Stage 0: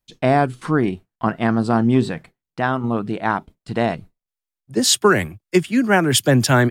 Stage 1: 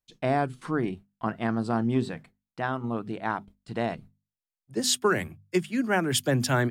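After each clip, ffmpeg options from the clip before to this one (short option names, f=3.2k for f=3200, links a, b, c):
-af "bandreject=f=50:t=h:w=6,bandreject=f=100:t=h:w=6,bandreject=f=150:t=h:w=6,bandreject=f=200:t=h:w=6,bandreject=f=250:t=h:w=6,volume=-9dB"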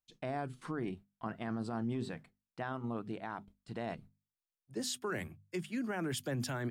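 -af "alimiter=limit=-22dB:level=0:latency=1:release=23,volume=-7dB"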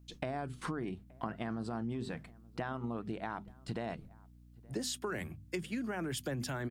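-filter_complex "[0:a]acompressor=threshold=-46dB:ratio=6,aeval=exprs='val(0)+0.000447*(sin(2*PI*60*n/s)+sin(2*PI*2*60*n/s)/2+sin(2*PI*3*60*n/s)/3+sin(2*PI*4*60*n/s)/4+sin(2*PI*5*60*n/s)/5)':c=same,asplit=2[a][b];[b]adelay=874.6,volume=-24dB,highshelf=f=4k:g=-19.7[c];[a][c]amix=inputs=2:normalize=0,volume=10.5dB"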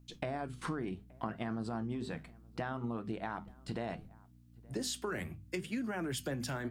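-af "flanger=delay=7.7:depth=5.2:regen=-74:speed=0.69:shape=triangular,volume=4.5dB"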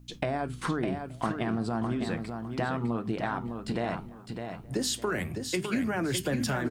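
-af "aecho=1:1:607|1214|1821:0.473|0.118|0.0296,volume=7.5dB"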